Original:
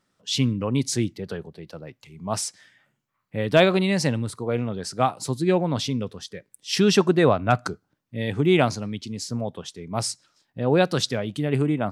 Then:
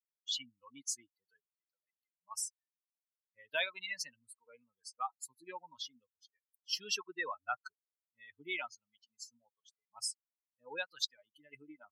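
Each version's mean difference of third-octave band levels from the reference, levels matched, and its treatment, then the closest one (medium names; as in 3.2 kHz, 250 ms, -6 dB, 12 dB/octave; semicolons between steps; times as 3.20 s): 15.5 dB: expander on every frequency bin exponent 3; high-pass 1.4 kHz 12 dB/octave; compression 1.5:1, threshold -44 dBFS, peak gain reduction 7.5 dB; trim +1.5 dB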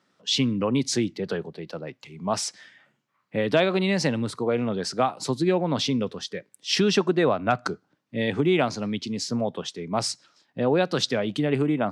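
3.5 dB: high-pass 62 Hz; three-band isolator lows -13 dB, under 150 Hz, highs -13 dB, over 6.6 kHz; compression 2.5:1, threshold -26 dBFS, peak gain reduction 10 dB; trim +5 dB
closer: second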